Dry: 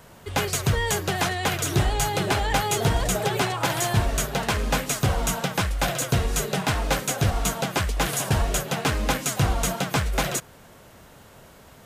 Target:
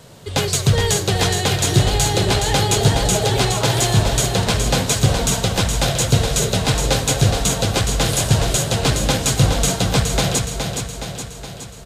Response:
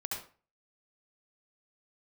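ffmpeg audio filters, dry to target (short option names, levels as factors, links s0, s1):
-filter_complex "[0:a]equalizer=f=125:t=o:w=1:g=9,equalizer=f=250:t=o:w=1:g=3,equalizer=f=500:t=o:w=1:g=7,equalizer=f=4000:t=o:w=1:g=10,equalizer=f=8000:t=o:w=1:g=7,aecho=1:1:418|836|1254|1672|2090|2508|2926|3344:0.501|0.291|0.169|0.0978|0.0567|0.0329|0.0191|0.0111,asplit=2[s0][s1];[1:a]atrim=start_sample=2205,lowshelf=f=170:g=10[s2];[s1][s2]afir=irnorm=-1:irlink=0,volume=0.188[s3];[s0][s3]amix=inputs=2:normalize=0,volume=0.75"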